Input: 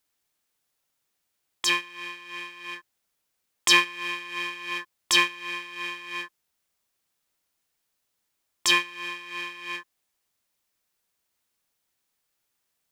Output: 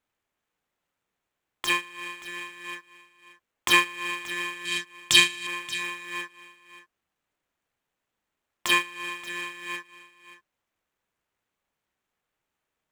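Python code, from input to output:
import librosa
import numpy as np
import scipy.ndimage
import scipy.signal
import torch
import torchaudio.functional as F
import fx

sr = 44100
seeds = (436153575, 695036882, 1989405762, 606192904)

y = scipy.ndimage.median_filter(x, 9, mode='constant')
y = fx.graphic_eq(y, sr, hz=(125, 250, 500, 1000, 4000, 8000), db=(8, 4, -6, -6, 10, 7), at=(4.65, 5.47))
y = y + 10.0 ** (-16.0 / 20.0) * np.pad(y, (int(579 * sr / 1000.0), 0))[:len(y)]
y = y * librosa.db_to_amplitude(1.5)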